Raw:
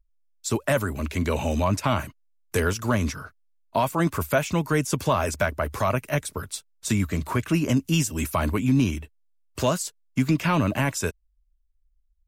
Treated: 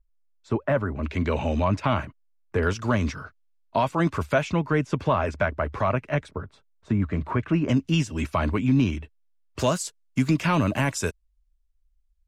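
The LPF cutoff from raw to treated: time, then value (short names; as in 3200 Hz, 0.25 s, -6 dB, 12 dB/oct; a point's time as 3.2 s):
1600 Hz
from 1.03 s 3300 Hz
from 2.05 s 1700 Hz
from 2.63 s 4600 Hz
from 4.52 s 2600 Hz
from 6.31 s 1200 Hz
from 7.02 s 2000 Hz
from 7.68 s 4000 Hz
from 9.59 s 9900 Hz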